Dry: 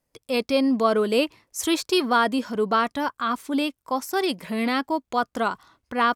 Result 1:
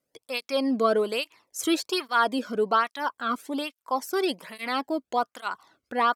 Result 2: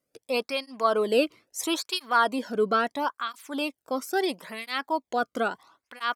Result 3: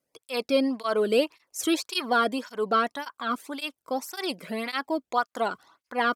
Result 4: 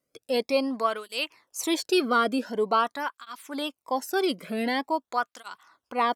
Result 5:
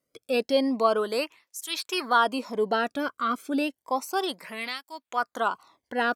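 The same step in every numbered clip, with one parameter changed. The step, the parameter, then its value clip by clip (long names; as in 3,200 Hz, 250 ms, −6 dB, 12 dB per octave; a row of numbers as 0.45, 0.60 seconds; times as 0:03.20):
through-zero flanger with one copy inverted, nulls at: 1.2, 0.75, 1.8, 0.46, 0.31 Hertz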